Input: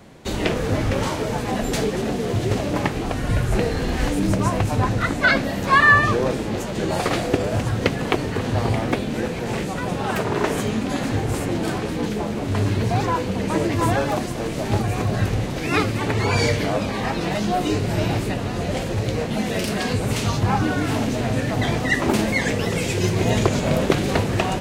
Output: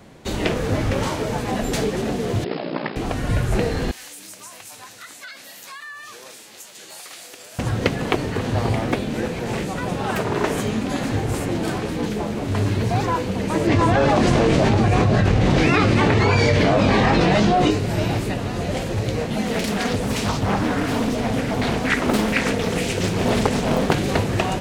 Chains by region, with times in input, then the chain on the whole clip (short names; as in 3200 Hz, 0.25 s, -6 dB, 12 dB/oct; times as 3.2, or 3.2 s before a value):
2.44–2.96 brick-wall FIR band-pass 160–5300 Hz + ring modulator 30 Hz
3.91–7.59 differentiator + compressor, threshold -34 dBFS
13.67–17.71 air absorption 80 m + doubler 22 ms -10.5 dB + fast leveller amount 100%
19.45–23.94 comb 4.3 ms, depth 38% + Doppler distortion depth 0.75 ms
whole clip: dry